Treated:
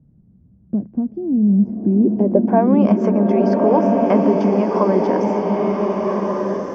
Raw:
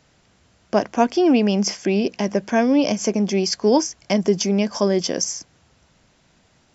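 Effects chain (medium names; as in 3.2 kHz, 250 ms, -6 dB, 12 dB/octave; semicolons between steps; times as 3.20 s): compression 2:1, threshold -26 dBFS, peak gain reduction 9 dB; low-pass sweep 190 Hz -> 1.2 kHz, 1.79–2.73 s; swelling reverb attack 1490 ms, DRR -1.5 dB; trim +6 dB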